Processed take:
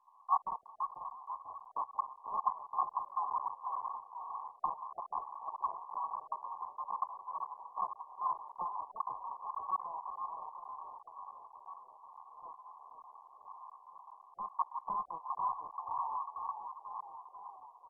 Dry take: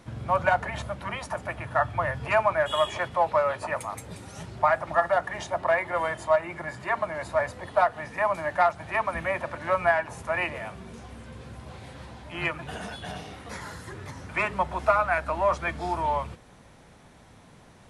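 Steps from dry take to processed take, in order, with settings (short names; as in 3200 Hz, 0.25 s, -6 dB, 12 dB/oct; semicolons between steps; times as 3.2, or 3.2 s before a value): steep high-pass 1200 Hz 48 dB/oct; soft clip -19 dBFS, distortion -20 dB; 12.14–12.83 doubler 27 ms -10.5 dB; frequency-shifting echo 0.492 s, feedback 57%, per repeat -44 Hz, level -8 dB; gain +6 dB; MP2 8 kbps 24000 Hz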